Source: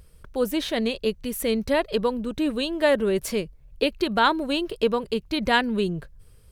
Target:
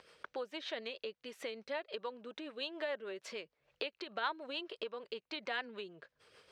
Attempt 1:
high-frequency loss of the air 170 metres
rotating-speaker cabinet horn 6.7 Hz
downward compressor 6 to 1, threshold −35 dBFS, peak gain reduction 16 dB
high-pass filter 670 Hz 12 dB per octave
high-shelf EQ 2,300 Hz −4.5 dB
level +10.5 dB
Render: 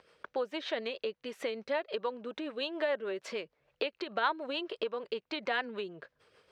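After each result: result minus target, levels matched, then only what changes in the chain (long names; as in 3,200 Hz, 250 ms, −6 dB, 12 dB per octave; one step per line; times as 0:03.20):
downward compressor: peak gain reduction −8 dB; 4,000 Hz band −3.0 dB
change: downward compressor 6 to 1, threshold −44.5 dBFS, peak gain reduction 24 dB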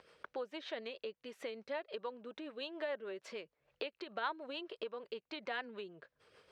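4,000 Hz band −3.0 dB
change: high-shelf EQ 2,300 Hz +2 dB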